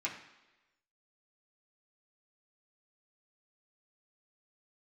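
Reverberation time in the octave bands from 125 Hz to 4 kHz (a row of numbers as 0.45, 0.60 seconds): 0.80, 0.95, 1.1, 1.0, 1.1, 1.0 seconds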